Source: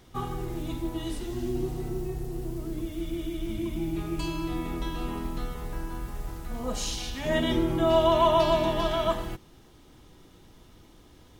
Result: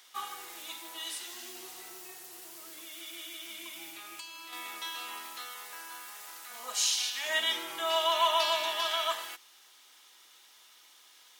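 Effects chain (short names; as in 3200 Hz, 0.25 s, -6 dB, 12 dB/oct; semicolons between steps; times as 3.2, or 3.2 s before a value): HPF 900 Hz 12 dB/oct; tilt shelf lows -7 dB, about 1200 Hz; 3.89–4.53 compressor 12:1, threshold -42 dBFS, peak gain reduction 11.5 dB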